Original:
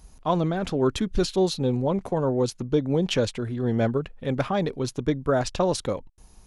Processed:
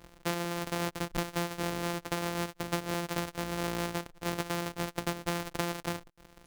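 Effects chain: sorted samples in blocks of 256 samples; bass shelf 170 Hz -11.5 dB; compression, threshold -28 dBFS, peak gain reduction 10.5 dB

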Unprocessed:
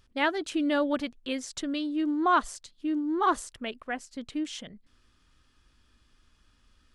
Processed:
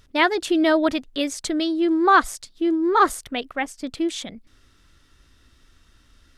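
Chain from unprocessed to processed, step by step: speed mistake 44.1 kHz file played as 48 kHz; trim +8 dB

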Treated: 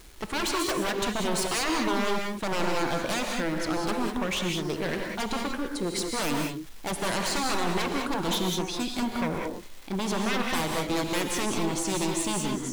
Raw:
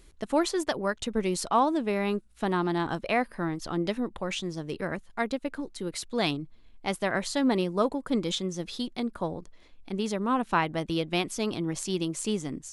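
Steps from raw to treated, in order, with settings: crackle 600 per s -44 dBFS; wavefolder -28 dBFS; gated-style reverb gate 220 ms rising, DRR 1.5 dB; trim +4 dB

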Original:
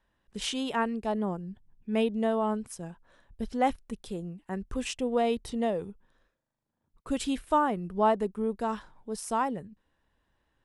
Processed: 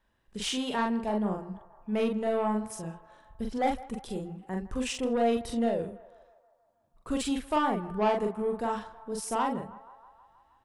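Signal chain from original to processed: saturation -21.5 dBFS, distortion -14 dB; doubling 43 ms -3 dB; on a send: band-passed feedback delay 159 ms, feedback 70%, band-pass 1 kHz, level -16.5 dB

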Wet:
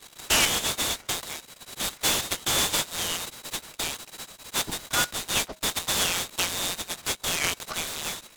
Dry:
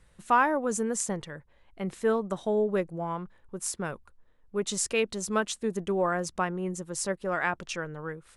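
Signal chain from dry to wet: local Wiener filter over 9 samples; in parallel at +1 dB: compression, threshold -34 dBFS, peak gain reduction 15.5 dB; on the sum: feedback comb 820 Hz, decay 0.2 s, harmonics all, mix 70%; frequency inversion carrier 3.9 kHz; delay time shaken by noise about 3.5 kHz, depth 0.06 ms; trim +8.5 dB

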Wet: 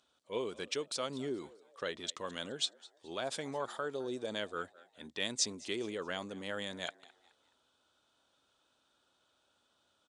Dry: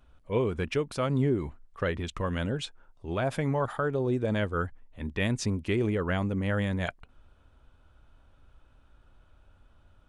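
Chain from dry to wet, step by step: high-pass 310 Hz 12 dB/octave; high-order bell 5.4 kHz +13.5 dB; frequency-shifting echo 211 ms, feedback 40%, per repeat +86 Hz, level -21.5 dB; trim -8 dB

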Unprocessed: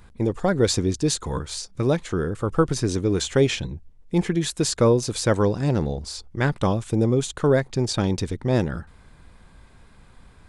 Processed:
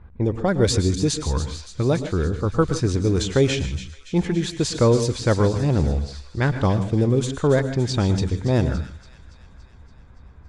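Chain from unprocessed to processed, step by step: peaking EQ 73 Hz +10.5 dB 0.83 oct; level-controlled noise filter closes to 2.1 kHz, open at -13.5 dBFS; feedback echo behind a high-pass 284 ms, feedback 66%, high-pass 2.3 kHz, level -9.5 dB; on a send at -10.5 dB: reverberation, pre-delay 103 ms; on the sum: tape noise reduction on one side only decoder only

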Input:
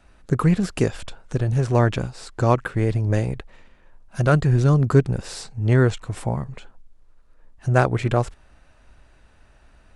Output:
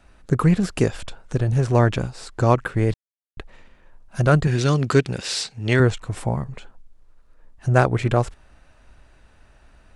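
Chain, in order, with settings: 2.94–3.37 s: mute; 4.47–5.80 s: frequency weighting D; trim +1 dB

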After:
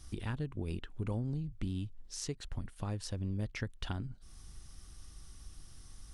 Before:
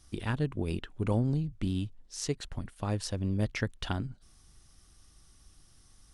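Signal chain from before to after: peaking EQ 630 Hz -2 dB 0.32 oct; compression 2:1, threshold -49 dBFS, peak gain reduction 14 dB; bass shelf 98 Hz +6.5 dB; trim +3.5 dB

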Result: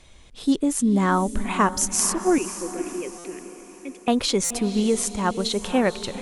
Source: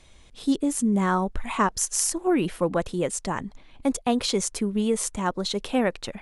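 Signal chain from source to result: 2.38–4.08 s: two resonant band-passes 980 Hz, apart 2.7 oct; echo that smears into a reverb 511 ms, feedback 45%, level -11.5 dB; buffer glitch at 3.18/4.44 s, samples 256, times 10; trim +2.5 dB

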